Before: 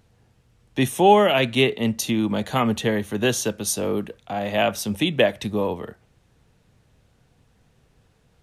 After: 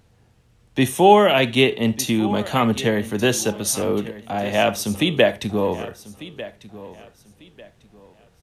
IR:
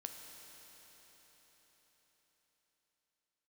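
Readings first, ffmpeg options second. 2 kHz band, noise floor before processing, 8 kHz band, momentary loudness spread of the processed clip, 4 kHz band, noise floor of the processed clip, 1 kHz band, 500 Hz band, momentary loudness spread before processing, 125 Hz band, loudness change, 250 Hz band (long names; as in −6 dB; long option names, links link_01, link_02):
+2.5 dB, −62 dBFS, +2.5 dB, 20 LU, +2.5 dB, −57 dBFS, +2.5 dB, +2.5 dB, 12 LU, +2.0 dB, +2.5 dB, +2.5 dB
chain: -filter_complex "[0:a]aecho=1:1:1196|2392|3588:0.141|0.0381|0.0103,asplit=2[link_01][link_02];[1:a]atrim=start_sample=2205,atrim=end_sample=4410,asetrate=48510,aresample=44100[link_03];[link_02][link_03]afir=irnorm=-1:irlink=0,volume=5.5dB[link_04];[link_01][link_04]amix=inputs=2:normalize=0,volume=-3.5dB"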